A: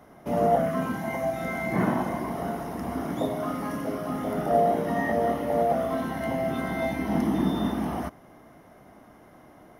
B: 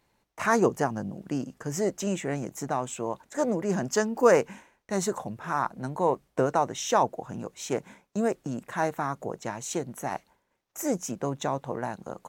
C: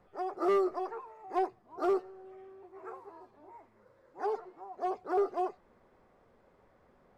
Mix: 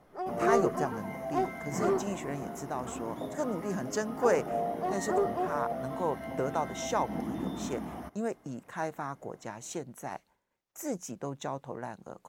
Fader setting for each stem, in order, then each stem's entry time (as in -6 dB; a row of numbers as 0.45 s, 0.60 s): -10.5 dB, -7.0 dB, 0.0 dB; 0.00 s, 0.00 s, 0.00 s